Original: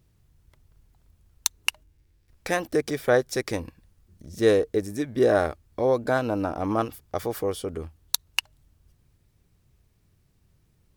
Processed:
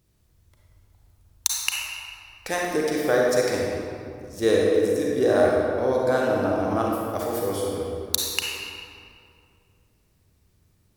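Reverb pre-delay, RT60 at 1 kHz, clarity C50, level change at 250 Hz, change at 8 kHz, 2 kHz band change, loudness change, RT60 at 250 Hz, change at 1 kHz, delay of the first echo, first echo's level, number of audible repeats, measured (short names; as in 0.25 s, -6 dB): 33 ms, 2.3 s, -2.0 dB, +2.0 dB, +4.0 dB, +2.0 dB, +2.0 dB, 2.8 s, +2.0 dB, none, none, none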